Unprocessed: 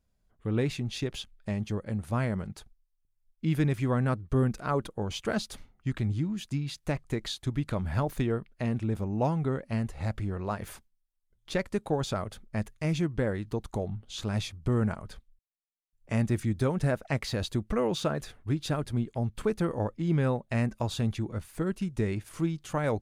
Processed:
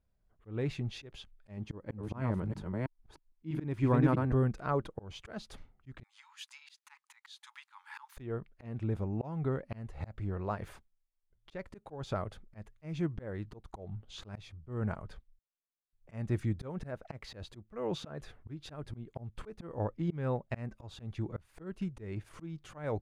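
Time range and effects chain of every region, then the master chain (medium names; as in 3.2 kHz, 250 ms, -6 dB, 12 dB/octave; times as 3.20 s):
1.57–4.32 s: chunks repeated in reverse 323 ms, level -3.5 dB + small resonant body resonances 290/940 Hz, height 7 dB, ringing for 20 ms
6.03–8.17 s: brick-wall FIR high-pass 810 Hz + treble shelf 3.2 kHz +8 dB
whole clip: low-pass 2 kHz 6 dB/octave; peaking EQ 230 Hz -4 dB 0.58 oct; slow attack 241 ms; trim -2 dB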